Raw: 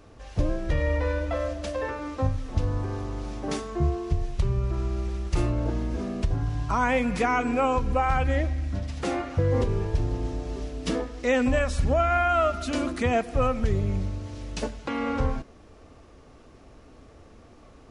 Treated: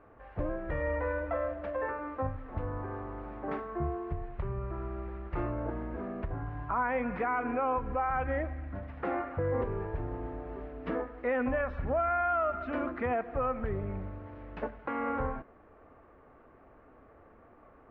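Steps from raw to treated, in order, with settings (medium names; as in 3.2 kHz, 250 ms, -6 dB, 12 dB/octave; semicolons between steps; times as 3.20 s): low-pass 1.8 kHz 24 dB/octave; bass shelf 350 Hz -12 dB; peak limiter -22 dBFS, peak gain reduction 6.5 dB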